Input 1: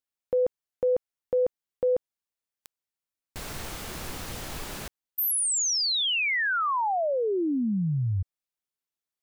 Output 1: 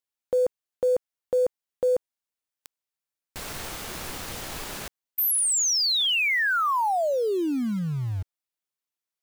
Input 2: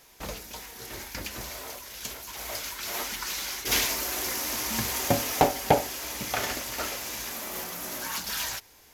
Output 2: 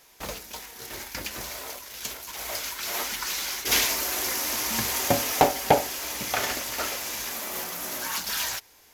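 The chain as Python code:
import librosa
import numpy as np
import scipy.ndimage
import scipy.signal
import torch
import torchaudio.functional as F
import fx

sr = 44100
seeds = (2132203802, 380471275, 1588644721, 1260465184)

p1 = fx.low_shelf(x, sr, hz=260.0, db=-5.5)
p2 = fx.quant_dither(p1, sr, seeds[0], bits=6, dither='none')
y = p1 + F.gain(torch.from_numpy(p2), -8.5).numpy()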